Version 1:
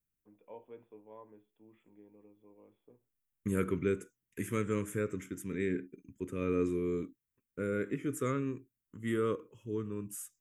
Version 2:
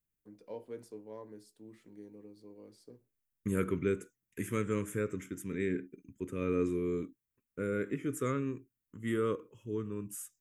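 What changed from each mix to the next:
first voice: remove rippled Chebyshev low-pass 3.5 kHz, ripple 9 dB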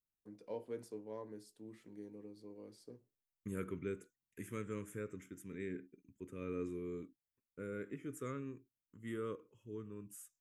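second voice -10.0 dB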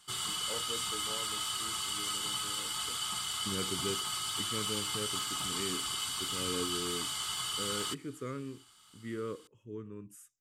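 second voice +3.5 dB; background: unmuted; master: add treble shelf 9.3 kHz -9 dB

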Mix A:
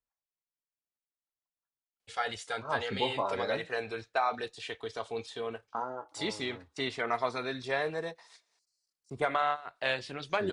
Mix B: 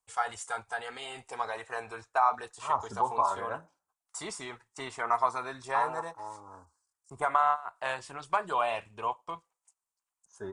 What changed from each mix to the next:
first voice: entry -2.00 s; master: add graphic EQ 125/250/500/1000/2000/4000/8000 Hz -4/-7/-7/+12/-5/-12/+11 dB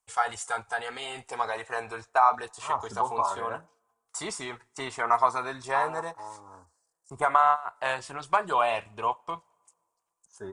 first voice +4.0 dB; reverb: on, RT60 2.2 s

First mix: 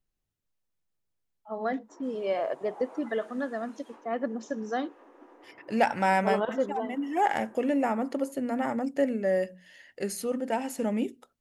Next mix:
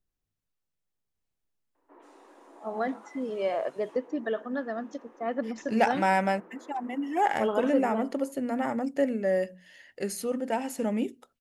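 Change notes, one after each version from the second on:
first voice: entry +1.15 s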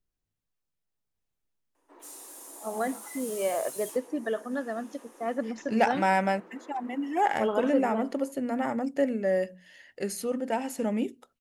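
background: remove low-pass 1.9 kHz 12 dB/octave

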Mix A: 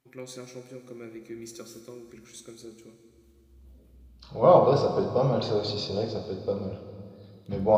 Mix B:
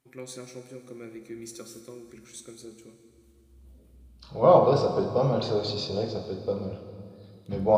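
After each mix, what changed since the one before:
master: add peaking EQ 9.1 kHz +6.5 dB 0.41 oct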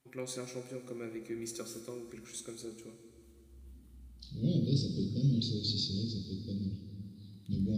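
second voice: add Chebyshev band-stop 270–3700 Hz, order 3

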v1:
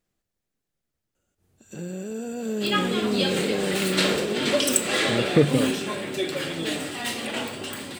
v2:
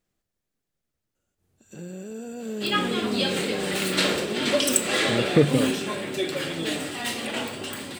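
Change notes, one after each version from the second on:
first sound -4.0 dB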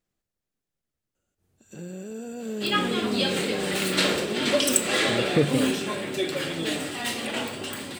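speech -3.5 dB

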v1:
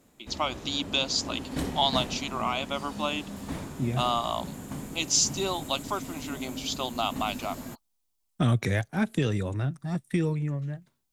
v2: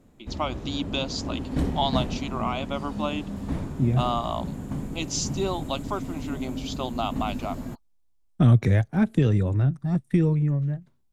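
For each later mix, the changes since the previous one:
master: add tilt EQ -2.5 dB/octave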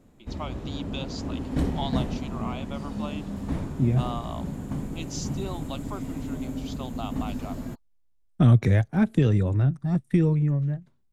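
first voice -8.0 dB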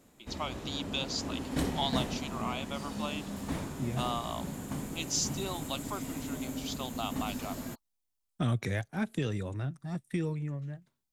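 second voice -6.0 dB; master: add tilt EQ +2.5 dB/octave

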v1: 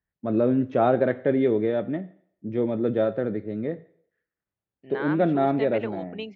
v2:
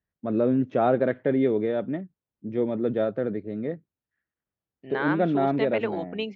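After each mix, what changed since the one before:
second voice +4.5 dB; reverb: off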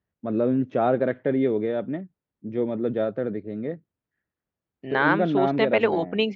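second voice +7.5 dB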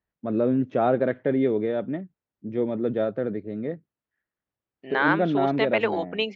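second voice: add high-pass 510 Hz 6 dB/octave

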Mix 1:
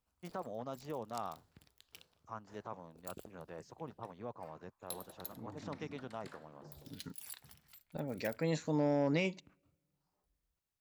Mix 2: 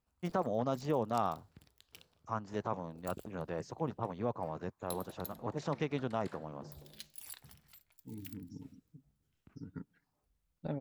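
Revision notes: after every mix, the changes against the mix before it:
first voice +7.5 dB; second voice: entry +2.70 s; master: add bass shelf 410 Hz +4.5 dB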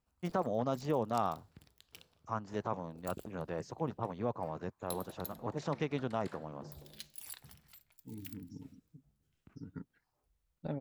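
second voice: send off; background: send +11.0 dB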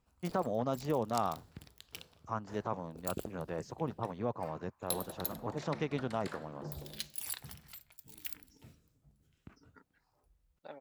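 second voice: add high-pass 750 Hz 12 dB/octave; background +7.5 dB

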